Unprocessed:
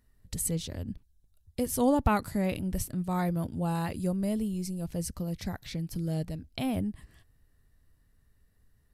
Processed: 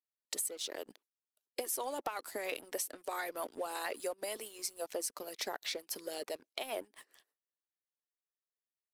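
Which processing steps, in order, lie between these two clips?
steep high-pass 350 Hz 36 dB/oct; gate with hold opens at -58 dBFS; harmonic-percussive split harmonic -14 dB; compressor 12:1, threshold -42 dBFS, peak gain reduction 17.5 dB; sample leveller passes 2; gain +1 dB

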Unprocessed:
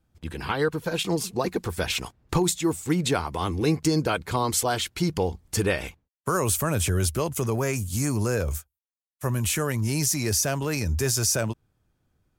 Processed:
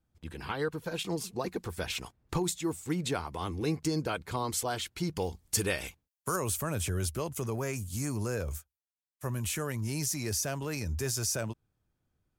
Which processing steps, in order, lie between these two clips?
5.17–6.36 high shelf 3300 Hz +10.5 dB; gain -8 dB

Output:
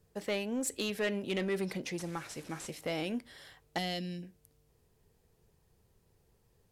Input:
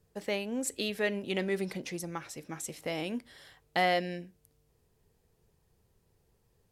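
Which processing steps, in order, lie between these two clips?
1.99–2.7 delta modulation 64 kbps, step -47 dBFS; 3.78–4.23 band shelf 950 Hz -13 dB 2.9 oct; soft clip -27 dBFS, distortion -14 dB; gain +1 dB

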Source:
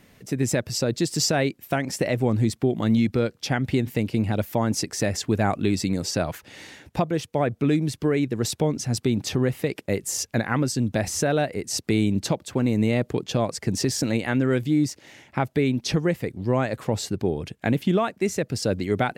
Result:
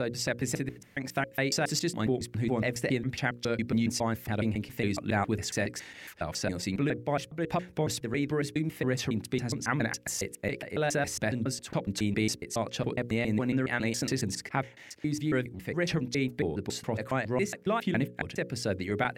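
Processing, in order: slices in reverse order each 0.138 s, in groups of 7; bell 1900 Hz +6 dB 1.1 oct; notches 60/120/180/240/300/360/420/480/540 Hz; gain -6.5 dB

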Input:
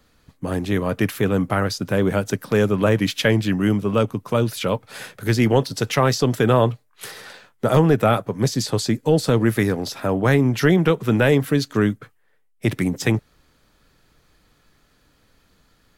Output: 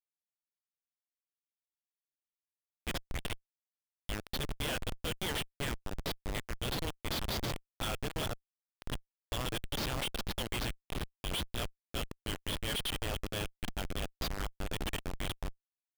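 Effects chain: whole clip reversed; band-pass 3200 Hz, Q 5.9; Schmitt trigger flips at -39.5 dBFS; gain +9 dB

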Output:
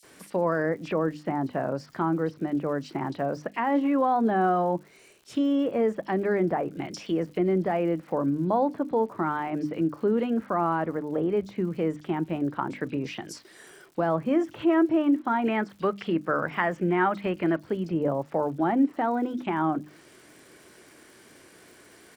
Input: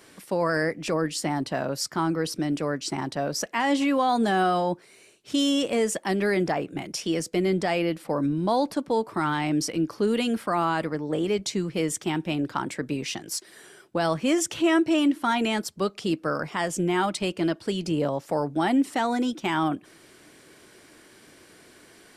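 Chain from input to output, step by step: HPF 49 Hz; notches 50/100/150/200/250/300 Hz; treble ducked by the level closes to 1400 Hz, closed at -24.5 dBFS; 15.43–17.57 bell 2000 Hz +8.5 dB 1.4 oct; crackle 180/s -45 dBFS; bands offset in time highs, lows 30 ms, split 3900 Hz

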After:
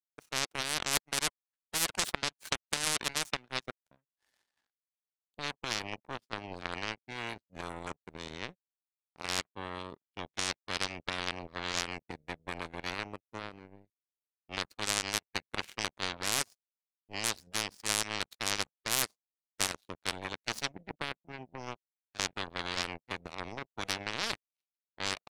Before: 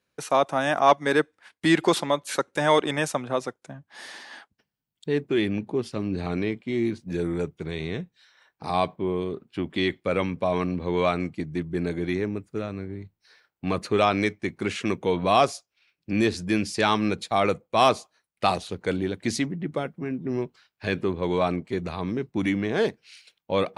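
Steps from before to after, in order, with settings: tempo 0.94×; power-law curve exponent 3; spectral compressor 10:1

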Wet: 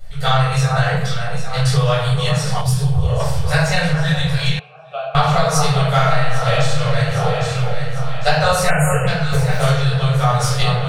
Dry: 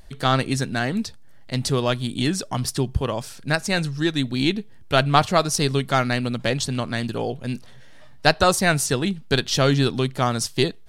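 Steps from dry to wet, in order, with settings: 5.81–6.76 reverb throw, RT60 1 s, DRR -1 dB; 9.19–9.63 median filter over 25 samples; echo with dull and thin repeats by turns 0.402 s, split 1500 Hz, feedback 67%, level -7 dB; reverb RT60 0.80 s, pre-delay 5 ms, DRR -11 dB; compressor 4:1, threshold -5 dBFS, peak gain reduction 9 dB; 2.61–3.2 bell 1800 Hz -9.5 dB 2.4 oct; 4.59–5.15 vowel filter a; 8.7–9.07 spectral delete 3100–6600 Hz; elliptic band-stop 170–450 Hz, stop band 40 dB; gain -5.5 dB

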